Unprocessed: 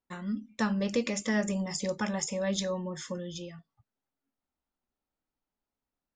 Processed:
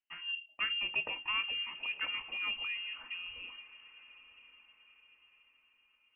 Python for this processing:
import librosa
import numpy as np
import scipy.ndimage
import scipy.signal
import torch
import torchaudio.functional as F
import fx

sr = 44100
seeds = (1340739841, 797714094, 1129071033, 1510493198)

y = fx.echo_diffused(x, sr, ms=977, feedback_pct=41, wet_db=-16.0)
y = fx.freq_invert(y, sr, carrier_hz=3000)
y = y * 10.0 ** (-6.0 / 20.0)